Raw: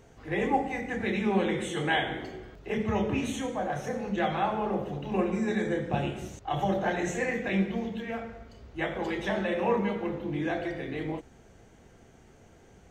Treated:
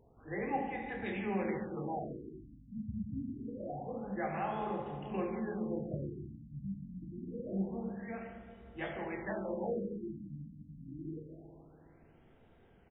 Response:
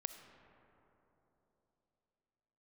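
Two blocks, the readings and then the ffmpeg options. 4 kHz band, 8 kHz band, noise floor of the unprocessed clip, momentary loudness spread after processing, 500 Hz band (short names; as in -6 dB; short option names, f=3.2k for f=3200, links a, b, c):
under -20 dB, under -35 dB, -56 dBFS, 12 LU, -9.5 dB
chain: -filter_complex "[0:a]aecho=1:1:46|83|154:0.141|0.211|0.251[a];[1:a]atrim=start_sample=2205,asetrate=66150,aresample=44100[b];[a][b]afir=irnorm=-1:irlink=0,afftfilt=real='re*lt(b*sr/1024,260*pow(3900/260,0.5+0.5*sin(2*PI*0.26*pts/sr)))':imag='im*lt(b*sr/1024,260*pow(3900/260,0.5+0.5*sin(2*PI*0.26*pts/sr)))':win_size=1024:overlap=0.75,volume=-2.5dB"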